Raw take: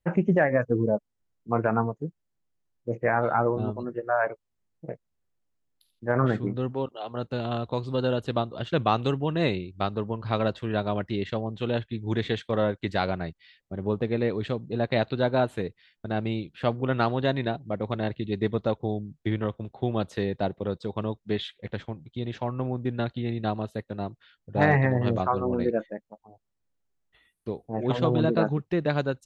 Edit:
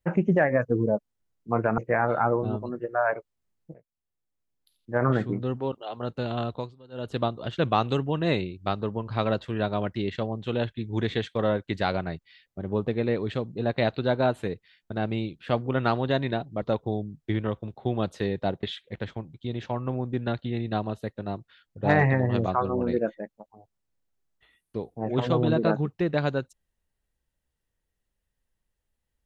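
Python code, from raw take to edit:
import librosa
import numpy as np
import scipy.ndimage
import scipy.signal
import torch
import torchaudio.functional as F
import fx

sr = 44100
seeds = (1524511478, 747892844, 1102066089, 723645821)

y = fx.edit(x, sr, fx.cut(start_s=1.78, length_s=1.14),
    fx.fade_in_from(start_s=4.88, length_s=1.2, floor_db=-21.0),
    fx.fade_down_up(start_s=7.65, length_s=0.64, db=-24.0, fade_s=0.24),
    fx.cut(start_s=17.76, length_s=0.83),
    fx.cut(start_s=20.6, length_s=0.75), tone=tone)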